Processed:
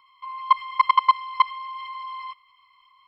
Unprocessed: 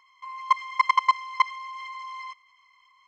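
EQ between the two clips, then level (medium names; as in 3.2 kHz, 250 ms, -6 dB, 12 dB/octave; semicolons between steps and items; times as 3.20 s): peaking EQ 720 Hz -6.5 dB 0.75 oct; treble shelf 4.4 kHz -5.5 dB; static phaser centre 1.8 kHz, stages 6; +6.0 dB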